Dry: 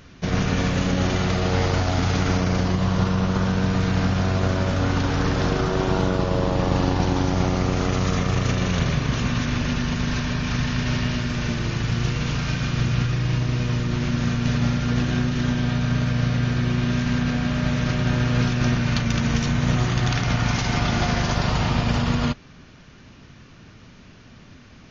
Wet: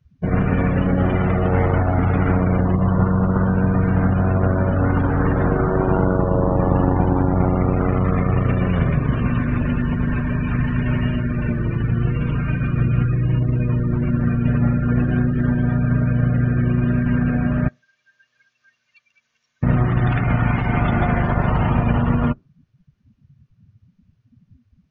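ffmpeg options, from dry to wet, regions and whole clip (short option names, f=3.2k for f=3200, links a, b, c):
-filter_complex "[0:a]asettb=1/sr,asplit=3[a][b][c];[a]atrim=end=17.684[d];[b]atrim=start=17.68:end=19.63,asetpts=PTS-STARTPTS,afade=t=in:d=0.004:c=qsin,afade=t=out:st=1.946:d=0.004:c=qsin,aderivative,aecho=1:1:1.8:0.3,atrim=end_sample=85995[e];[c]atrim=start=19.626[f];[d][e]acrossfade=d=0.004:c1=hsin:c2=qsin[g];[g][f]acrossfade=d=0.004:c1=qsin:c2=hsin,acrossover=split=3100[h][i];[i]acompressor=threshold=-46dB:ratio=4:attack=1:release=60[j];[h][j]amix=inputs=2:normalize=0,afftdn=nr=33:nf=-30,volume=4dB"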